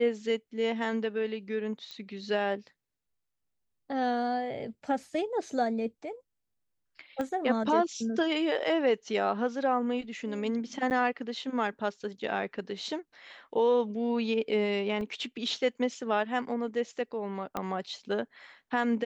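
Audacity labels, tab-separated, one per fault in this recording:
1.910000	1.910000	pop -28 dBFS
7.210000	7.210000	pop -21 dBFS
10.900000	10.910000	dropout 9.3 ms
15.010000	15.010000	dropout 2.4 ms
17.570000	17.570000	pop -18 dBFS

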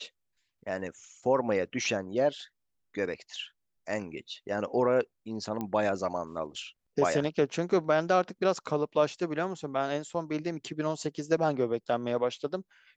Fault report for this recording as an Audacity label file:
5.610000	5.610000	pop -21 dBFS

